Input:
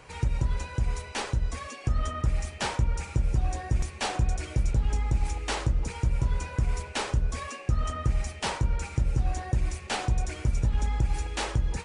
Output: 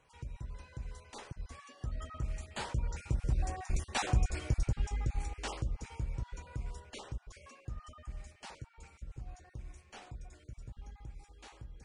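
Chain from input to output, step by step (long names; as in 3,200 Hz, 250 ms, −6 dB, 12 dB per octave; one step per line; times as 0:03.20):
time-frequency cells dropped at random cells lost 21%
source passing by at 0:04.06, 6 m/s, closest 4.4 metres
level −2.5 dB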